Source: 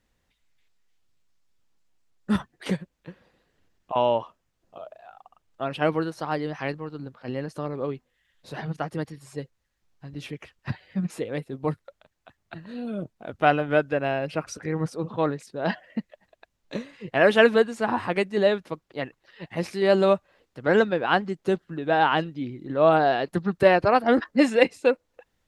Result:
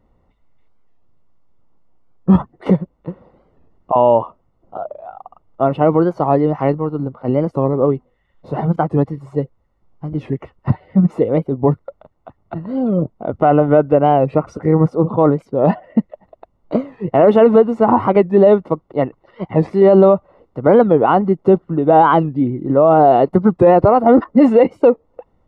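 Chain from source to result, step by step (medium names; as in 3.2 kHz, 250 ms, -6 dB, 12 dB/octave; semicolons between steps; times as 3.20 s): Savitzky-Golay filter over 65 samples; loudness maximiser +16 dB; warped record 45 rpm, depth 160 cents; trim -1 dB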